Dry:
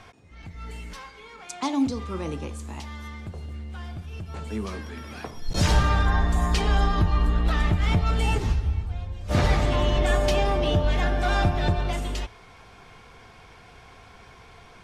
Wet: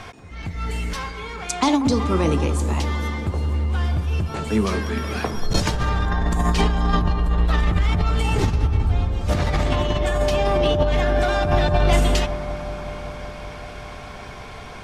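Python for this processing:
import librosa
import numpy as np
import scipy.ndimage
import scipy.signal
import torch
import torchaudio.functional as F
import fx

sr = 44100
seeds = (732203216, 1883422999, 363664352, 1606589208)

p1 = fx.over_compress(x, sr, threshold_db=-26.0, ratio=-1.0)
p2 = p1 + fx.echo_bbd(p1, sr, ms=188, stages=2048, feedback_pct=83, wet_db=-13, dry=0)
y = F.gain(torch.from_numpy(p2), 7.0).numpy()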